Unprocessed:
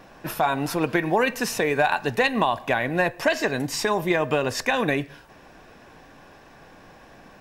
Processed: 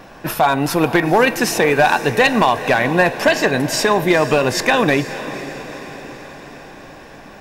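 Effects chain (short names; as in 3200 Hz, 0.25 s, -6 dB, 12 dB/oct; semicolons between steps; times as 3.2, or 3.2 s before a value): hard clip -14 dBFS, distortion -19 dB; diffused feedback echo 0.472 s, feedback 60%, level -13.5 dB; gain +8 dB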